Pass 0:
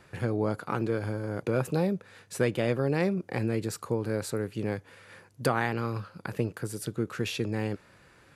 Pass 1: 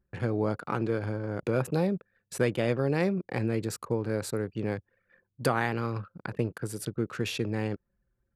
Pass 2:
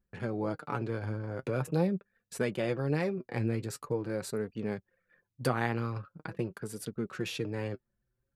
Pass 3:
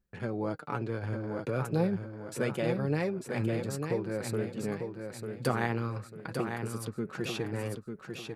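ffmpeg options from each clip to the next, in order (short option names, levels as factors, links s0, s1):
-af "anlmdn=0.1"
-af "flanger=delay=4:depth=4.7:regen=40:speed=0.44:shape=triangular"
-af "aecho=1:1:896|1792|2688|3584:0.501|0.185|0.0686|0.0254"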